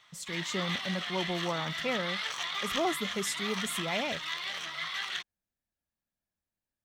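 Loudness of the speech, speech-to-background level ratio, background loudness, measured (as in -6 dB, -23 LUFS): -35.0 LUFS, -0.5 dB, -34.5 LUFS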